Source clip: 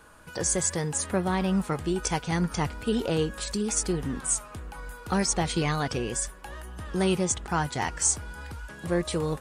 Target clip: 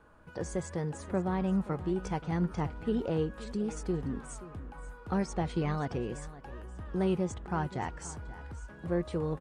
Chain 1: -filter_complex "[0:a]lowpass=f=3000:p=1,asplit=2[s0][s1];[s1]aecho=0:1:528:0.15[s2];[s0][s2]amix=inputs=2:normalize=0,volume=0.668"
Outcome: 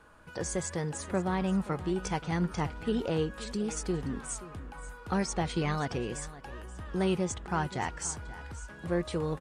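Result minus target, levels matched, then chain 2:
4 kHz band +7.0 dB
-filter_complex "[0:a]lowpass=f=910:p=1,asplit=2[s0][s1];[s1]aecho=0:1:528:0.15[s2];[s0][s2]amix=inputs=2:normalize=0,volume=0.668"

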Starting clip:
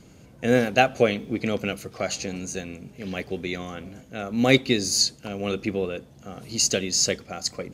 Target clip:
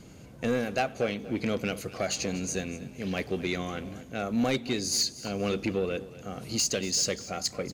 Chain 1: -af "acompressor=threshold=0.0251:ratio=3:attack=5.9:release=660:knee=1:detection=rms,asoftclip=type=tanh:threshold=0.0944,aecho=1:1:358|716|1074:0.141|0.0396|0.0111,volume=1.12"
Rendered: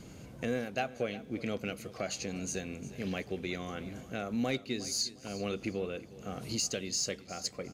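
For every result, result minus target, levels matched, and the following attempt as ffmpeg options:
echo 120 ms late; compression: peak gain reduction +7.5 dB
-af "acompressor=threshold=0.0251:ratio=3:attack=5.9:release=660:knee=1:detection=rms,asoftclip=type=tanh:threshold=0.0944,aecho=1:1:238|476|714:0.141|0.0396|0.0111,volume=1.12"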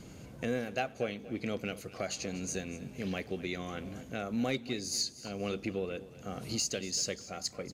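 compression: peak gain reduction +7.5 dB
-af "acompressor=threshold=0.0944:ratio=3:attack=5.9:release=660:knee=1:detection=rms,asoftclip=type=tanh:threshold=0.0944,aecho=1:1:238|476|714:0.141|0.0396|0.0111,volume=1.12"

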